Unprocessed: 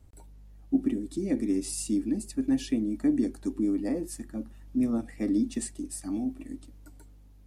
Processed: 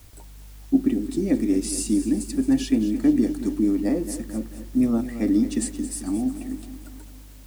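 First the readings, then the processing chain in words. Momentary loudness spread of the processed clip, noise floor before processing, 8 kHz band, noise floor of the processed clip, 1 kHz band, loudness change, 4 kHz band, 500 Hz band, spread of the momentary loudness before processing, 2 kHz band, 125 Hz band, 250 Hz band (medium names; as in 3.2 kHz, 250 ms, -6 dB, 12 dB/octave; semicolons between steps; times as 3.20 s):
12 LU, -53 dBFS, +6.5 dB, -44 dBFS, +6.5 dB, +6.5 dB, +6.5 dB, +6.5 dB, 10 LU, +6.5 dB, +7.0 dB, +6.5 dB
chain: added noise white -61 dBFS; bit-crushed delay 221 ms, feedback 55%, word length 9-bit, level -12 dB; trim +6 dB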